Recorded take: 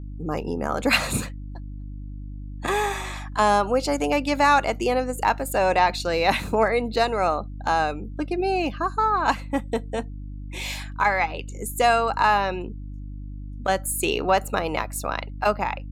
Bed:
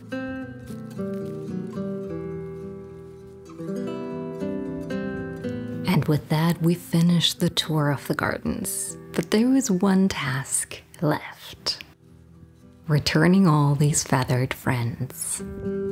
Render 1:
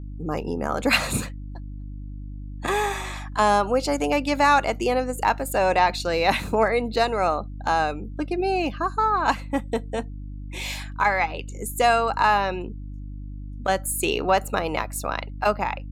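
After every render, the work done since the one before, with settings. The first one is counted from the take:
no processing that can be heard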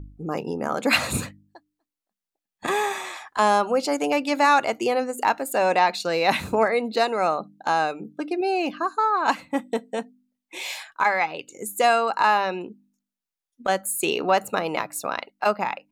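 hum removal 50 Hz, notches 6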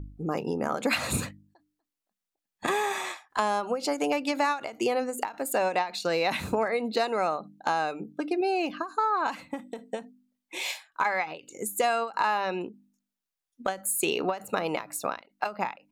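downward compressor 4 to 1, threshold −23 dBFS, peak gain reduction 9 dB
every ending faded ahead of time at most 190 dB per second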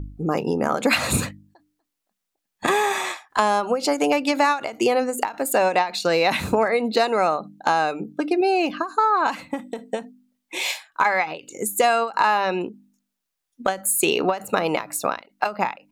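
level +7 dB

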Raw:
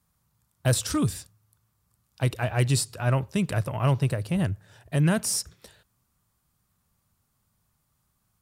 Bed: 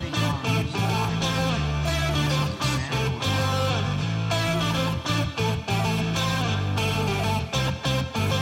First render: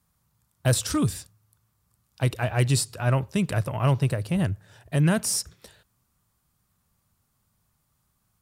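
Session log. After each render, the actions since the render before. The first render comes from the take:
level +1 dB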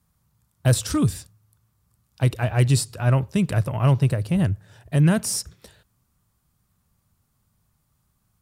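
low-shelf EQ 310 Hz +5 dB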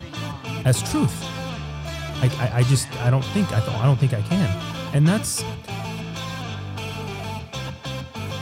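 mix in bed −6 dB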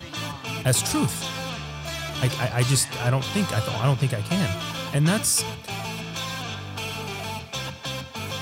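spectral tilt +1.5 dB per octave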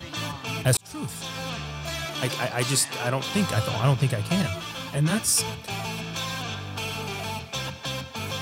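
0:00.77–0:01.55: fade in
0:02.05–0:03.35: high-pass filter 190 Hz
0:04.42–0:05.28: string-ensemble chorus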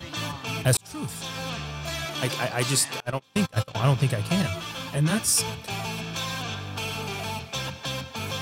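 0:03.00–0:03.75: noise gate −25 dBFS, range −30 dB

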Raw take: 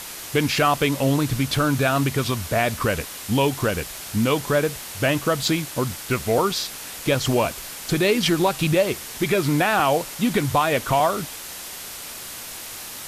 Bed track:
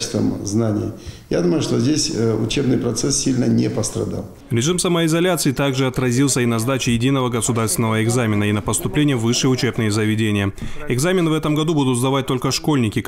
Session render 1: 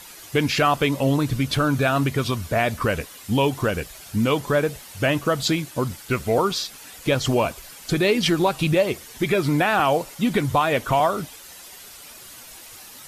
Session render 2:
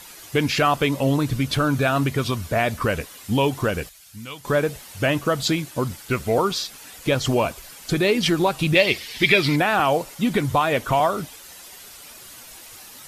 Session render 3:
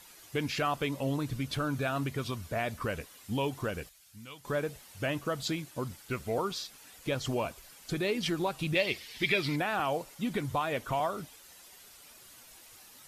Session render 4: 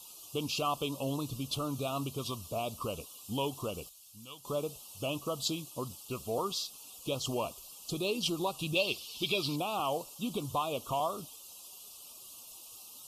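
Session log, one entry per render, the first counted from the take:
broadband denoise 10 dB, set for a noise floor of −36 dBFS
0:03.89–0:04.45: guitar amp tone stack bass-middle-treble 5-5-5; 0:08.75–0:09.56: flat-topped bell 3,100 Hz +12 dB
level −11.5 dB
elliptic band-stop filter 1,200–2,700 Hz, stop band 60 dB; spectral tilt +1.5 dB per octave

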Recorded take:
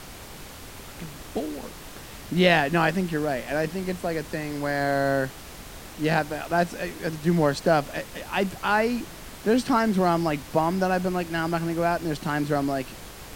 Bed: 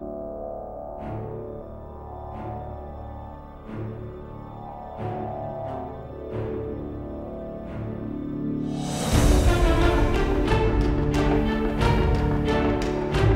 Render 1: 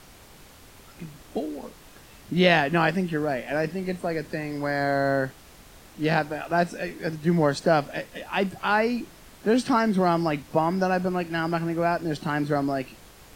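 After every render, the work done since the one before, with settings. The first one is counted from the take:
noise reduction from a noise print 8 dB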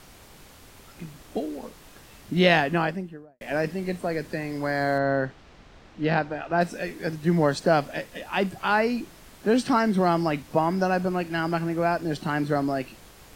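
0:02.55–0:03.41: fade out and dull
0:04.98–0:06.61: high-frequency loss of the air 150 metres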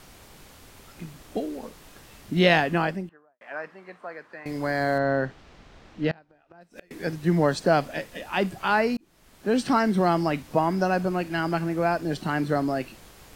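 0:03.09–0:04.46: resonant band-pass 1,200 Hz, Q 2
0:06.11–0:06.91: gate with flip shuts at −24 dBFS, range −29 dB
0:08.97–0:09.67: fade in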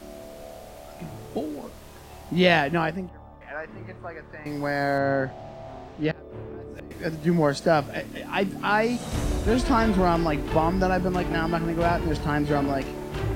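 mix in bed −8.5 dB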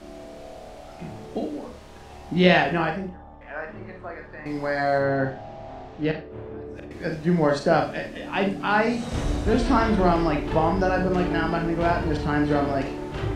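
high-frequency loss of the air 58 metres
four-comb reverb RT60 0.31 s, combs from 30 ms, DRR 3.5 dB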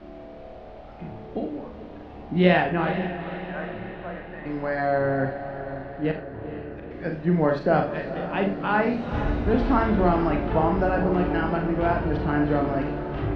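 high-frequency loss of the air 320 metres
feedback delay with all-pass diffusion 468 ms, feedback 61%, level −11 dB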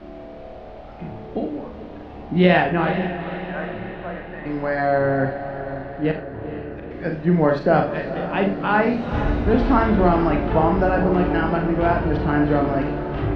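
level +4 dB
brickwall limiter −3 dBFS, peak gain reduction 2.5 dB

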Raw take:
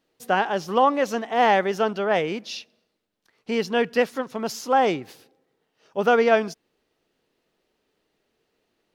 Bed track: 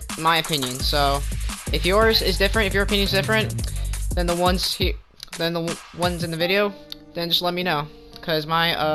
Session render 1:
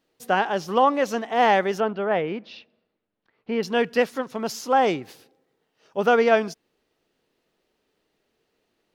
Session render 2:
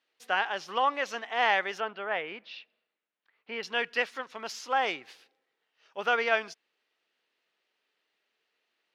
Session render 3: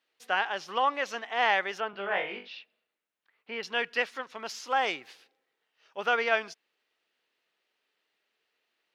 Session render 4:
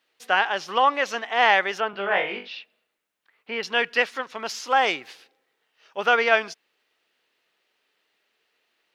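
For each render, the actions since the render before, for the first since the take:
0:01.80–0:03.63: high-frequency loss of the air 340 metres
resonant band-pass 2,400 Hz, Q 0.88
0:01.91–0:02.48: flutter between parallel walls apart 3.5 metres, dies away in 0.32 s; 0:04.67–0:05.08: high-shelf EQ 8,500 Hz +11 dB
level +7 dB

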